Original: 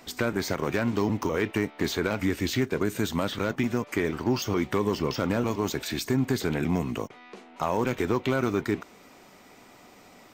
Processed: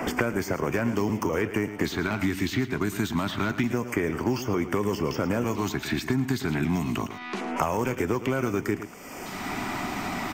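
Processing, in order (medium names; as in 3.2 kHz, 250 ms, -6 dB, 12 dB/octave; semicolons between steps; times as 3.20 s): LFO notch square 0.27 Hz 500–3900 Hz; delay 109 ms -13.5 dB; three bands compressed up and down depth 100%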